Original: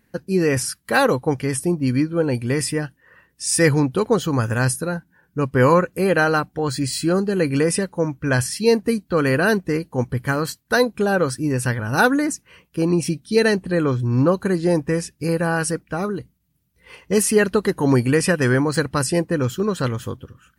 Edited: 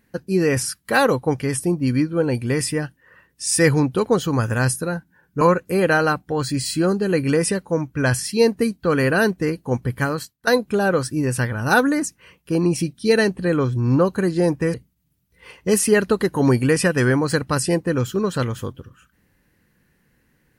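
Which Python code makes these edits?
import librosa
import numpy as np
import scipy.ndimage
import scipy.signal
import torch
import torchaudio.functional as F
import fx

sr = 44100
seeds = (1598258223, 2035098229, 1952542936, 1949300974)

y = fx.edit(x, sr, fx.cut(start_s=5.41, length_s=0.27),
    fx.fade_out_to(start_s=10.3, length_s=0.44, floor_db=-18.0),
    fx.cut(start_s=15.01, length_s=1.17), tone=tone)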